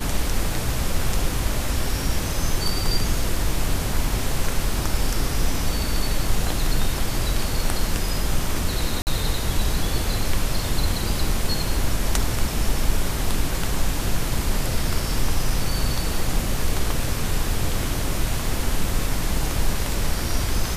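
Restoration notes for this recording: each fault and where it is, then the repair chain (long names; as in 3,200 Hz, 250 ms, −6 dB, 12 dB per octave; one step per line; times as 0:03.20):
0:09.02–0:09.07: drop-out 49 ms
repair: repair the gap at 0:09.02, 49 ms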